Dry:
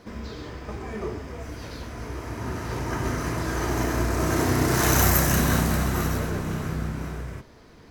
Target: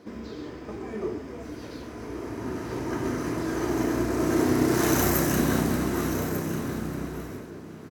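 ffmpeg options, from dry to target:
-filter_complex "[0:a]highpass=f=110:p=1,equalizer=f=310:w=1.1:g=9.5,asplit=2[s0][s1];[s1]aecho=0:1:1195:0.266[s2];[s0][s2]amix=inputs=2:normalize=0,volume=0.562"

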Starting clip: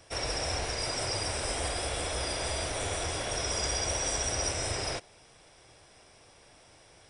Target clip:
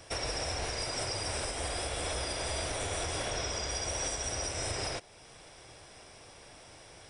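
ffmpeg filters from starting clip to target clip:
-filter_complex "[0:a]asettb=1/sr,asplit=3[s0][s1][s2];[s0]atrim=end=3.304[s3];[s1]atrim=start=3.3:end=3.71,asetpts=PTS-STARTPTS,afade=t=in:d=0.004:c=qsin,afade=t=out:st=0.406:d=0.004:c=qsin,lowpass=7000[s4];[s2]atrim=start=3.706[s5];[s3][s4]acrossfade=d=0.004:c1=hsin:c2=qsin[s6];[s6][s5]acrossfade=d=0.004:c1=qsin:c2=hsin,alimiter=level_in=1.78:limit=0.0631:level=0:latency=1:release=450,volume=0.562,volume=1.68"

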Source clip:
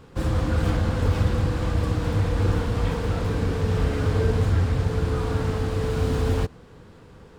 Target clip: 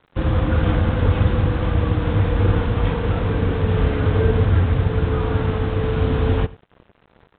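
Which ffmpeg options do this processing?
-af "aresample=8000,aeval=exprs='sgn(val(0))*max(abs(val(0))-0.00631,0)':c=same,aresample=44100,aecho=1:1:92:0.0944,volume=1.78"

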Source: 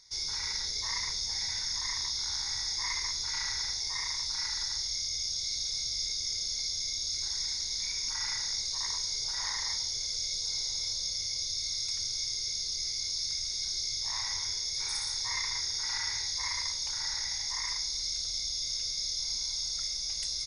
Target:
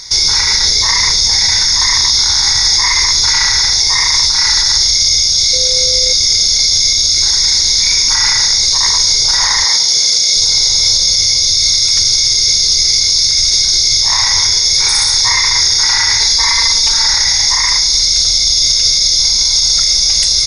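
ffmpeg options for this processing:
-filter_complex "[0:a]asettb=1/sr,asplit=3[s0][s1][s2];[s0]atrim=end=5.534[s3];[s1]atrim=start=5.53:end=6.13,asetpts=PTS-STARTPTS,afade=t=in:d=0.004:c=qsin,afade=t=out:st=0.596:d=0.004:c=qsin,aeval=exprs='val(0)+0.00501*sin(2*PI*510*n/s)':c=same[s4];[s2]atrim=start=6.126[s5];[s3][s4]acrossfade=d=0.004:c1=hsin:c2=qsin[s6];[s6][s5]acrossfade=d=0.004:c1=qsin:c2=hsin,asettb=1/sr,asplit=3[s7][s8][s9];[s7]atrim=end=9.644[s10];[s8]atrim=start=9.64:end=10.37,asetpts=PTS-STARTPTS,afade=t=in:d=0.004:c=qsin,afade=t=out:st=0.726:d=0.004:c=qsin,highpass=190[s11];[s9]atrim=start=10.366[s12];[s10][s11]acrossfade=d=0.004:c1=hsin:c2=qsin[s13];[s13][s12]acrossfade=d=0.004:c1=qsin:c2=hsin,asettb=1/sr,asplit=3[s14][s15][s16];[s14]atrim=end=16.204[s17];[s15]atrim=start=16.2:end=17.08,asetpts=PTS-STARTPTS,afade=t=in:d=0.004:c=qsin,afade=t=out:st=0.876:d=0.004:c=qsin,aecho=1:1:4.4:0.96,atrim=end_sample=38808[s18];[s16]atrim=start=17.076[s19];[s17][s18]acrossfade=d=0.004:c1=hsin:c2=qsin[s20];[s20][s19]acrossfade=d=0.004:c1=qsin:c2=hsin,alimiter=level_in=29.9:limit=0.891:release=50:level=0:latency=1,volume=0.891"

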